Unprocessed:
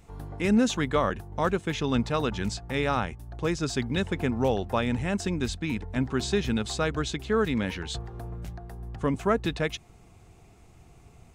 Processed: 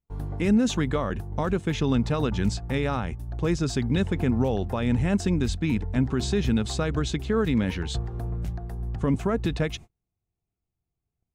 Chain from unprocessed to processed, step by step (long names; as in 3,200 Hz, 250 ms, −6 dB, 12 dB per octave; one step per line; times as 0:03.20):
noise gate −43 dBFS, range −38 dB
brickwall limiter −19 dBFS, peak gain reduction 7 dB
low-shelf EQ 350 Hz +8 dB